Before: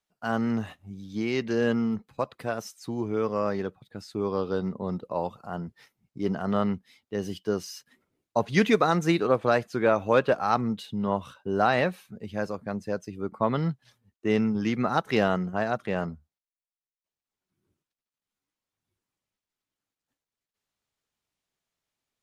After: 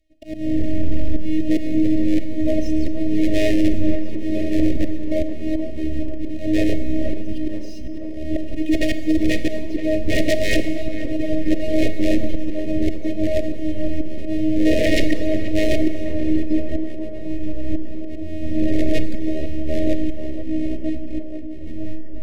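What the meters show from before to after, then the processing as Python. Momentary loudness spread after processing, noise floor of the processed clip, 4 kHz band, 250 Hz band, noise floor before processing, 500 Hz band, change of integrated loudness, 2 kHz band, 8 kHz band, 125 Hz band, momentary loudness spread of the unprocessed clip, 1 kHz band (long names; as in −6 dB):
11 LU, −24 dBFS, +6.5 dB, +9.5 dB, below −85 dBFS, +3.0 dB, +4.5 dB, +2.5 dB, +7.0 dB, +5.0 dB, 14 LU, below −15 dB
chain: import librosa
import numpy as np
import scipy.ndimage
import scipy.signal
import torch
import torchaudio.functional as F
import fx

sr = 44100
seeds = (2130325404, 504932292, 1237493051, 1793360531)

p1 = fx.halfwave_hold(x, sr)
p2 = fx.riaa(p1, sr, side='playback')
p3 = fx.echo_pitch(p2, sr, ms=92, semitones=-4, count=3, db_per_echo=-6.0)
p4 = fx.auto_swell(p3, sr, attack_ms=605.0)
p5 = fx.robotise(p4, sr, hz=312.0)
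p6 = fx.fold_sine(p5, sr, drive_db=15, ceiling_db=-2.5)
p7 = scipy.signal.sosfilt(scipy.signal.cheby1(5, 1.0, [660.0, 1800.0], 'bandstop', fs=sr, output='sos'), p6)
p8 = p7 + fx.echo_tape(p7, sr, ms=478, feedback_pct=81, wet_db=-10.0, lp_hz=1600.0, drive_db=-2.0, wow_cents=33, dry=0)
p9 = fx.rev_schroeder(p8, sr, rt60_s=1.4, comb_ms=28, drr_db=11.0)
y = p9 * librosa.db_to_amplitude(-8.0)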